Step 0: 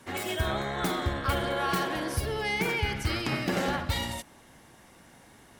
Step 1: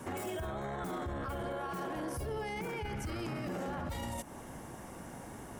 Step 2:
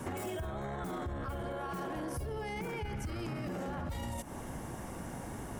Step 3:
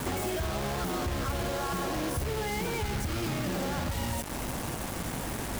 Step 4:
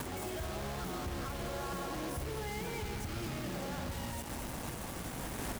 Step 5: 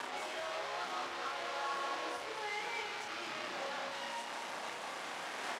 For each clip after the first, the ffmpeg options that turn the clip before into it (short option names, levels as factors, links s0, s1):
-af "equalizer=f=2000:t=o:w=1:g=-6,equalizer=f=4000:t=o:w=1:g=-12,equalizer=f=16000:t=o:w=1:g=-5,acompressor=threshold=0.00708:ratio=2.5,alimiter=level_in=6.68:limit=0.0631:level=0:latency=1:release=11,volume=0.15,volume=2.99"
-af "lowshelf=f=140:g=6,acompressor=threshold=0.0126:ratio=6,volume=1.41"
-af "aeval=exprs='val(0)+0.00355*(sin(2*PI*50*n/s)+sin(2*PI*2*50*n/s)/2+sin(2*PI*3*50*n/s)/3+sin(2*PI*4*50*n/s)/4+sin(2*PI*5*50*n/s)/5)':c=same,acrusher=bits=6:mix=0:aa=0.000001,volume=2"
-filter_complex "[0:a]alimiter=level_in=2:limit=0.0631:level=0:latency=1:release=283,volume=0.501,asplit=2[s0][s1];[s1]aecho=0:1:216:0.398[s2];[s0][s2]amix=inputs=2:normalize=0,volume=0.794"
-filter_complex "[0:a]acrusher=bits=7:mix=0:aa=0.000001,highpass=690,lowpass=4500,asplit=2[s0][s1];[s1]adelay=31,volume=0.708[s2];[s0][s2]amix=inputs=2:normalize=0,volume=1.33"